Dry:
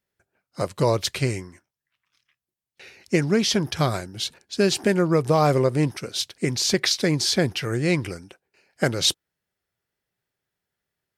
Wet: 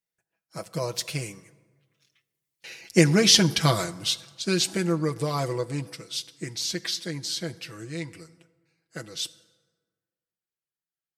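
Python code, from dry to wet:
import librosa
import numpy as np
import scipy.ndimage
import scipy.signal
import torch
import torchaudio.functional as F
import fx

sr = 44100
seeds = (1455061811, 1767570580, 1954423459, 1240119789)

y = fx.doppler_pass(x, sr, speed_mps=21, closest_m=14.0, pass_at_s=3.15)
y = fx.high_shelf(y, sr, hz=2900.0, db=8.5)
y = y + 0.68 * np.pad(y, (int(6.1 * sr / 1000.0), 0))[:len(y)]
y = fx.rev_plate(y, sr, seeds[0], rt60_s=1.5, hf_ratio=0.55, predelay_ms=0, drr_db=16.5)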